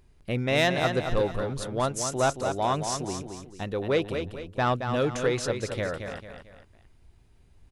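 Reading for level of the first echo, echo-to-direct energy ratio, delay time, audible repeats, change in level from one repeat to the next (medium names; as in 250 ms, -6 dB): -7.0 dB, -6.5 dB, 223 ms, 3, -8.0 dB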